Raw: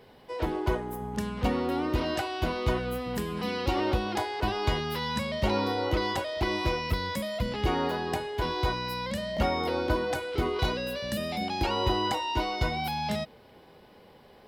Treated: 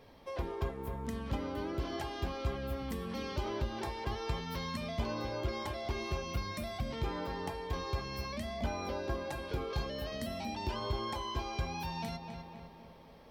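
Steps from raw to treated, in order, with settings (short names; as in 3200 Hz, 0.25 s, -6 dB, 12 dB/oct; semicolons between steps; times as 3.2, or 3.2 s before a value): flange 0.34 Hz, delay 3.2 ms, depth 4 ms, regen -71%; speed mistake 44.1 kHz file played as 48 kHz; darkening echo 0.255 s, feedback 51%, low-pass 3600 Hz, level -11 dB; compressor 2:1, threshold -40 dBFS, peak gain reduction 8.5 dB; low shelf 110 Hz +8 dB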